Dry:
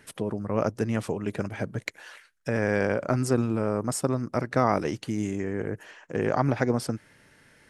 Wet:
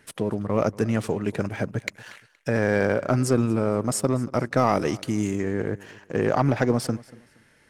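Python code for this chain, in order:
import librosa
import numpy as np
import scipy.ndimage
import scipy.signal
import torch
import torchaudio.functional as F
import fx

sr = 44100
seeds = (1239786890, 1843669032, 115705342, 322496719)

p1 = fx.leveller(x, sr, passes=1)
p2 = fx.peak_eq(p1, sr, hz=11000.0, db=3.5, octaves=1.8, at=(4.57, 5.42))
y = p2 + fx.echo_feedback(p2, sr, ms=235, feedback_pct=27, wet_db=-21.5, dry=0)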